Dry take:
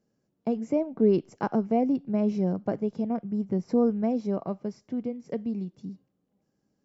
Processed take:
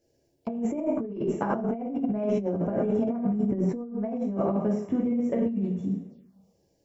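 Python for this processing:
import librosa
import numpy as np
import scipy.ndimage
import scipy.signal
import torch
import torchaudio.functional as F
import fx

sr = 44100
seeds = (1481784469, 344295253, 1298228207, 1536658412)

y = fx.rev_double_slope(x, sr, seeds[0], early_s=0.55, late_s=1.8, knee_db=-18, drr_db=-3.5)
y = fx.over_compress(y, sr, threshold_db=-28.0, ratio=-1.0)
y = fx.env_phaser(y, sr, low_hz=190.0, high_hz=4700.0, full_db=-30.0)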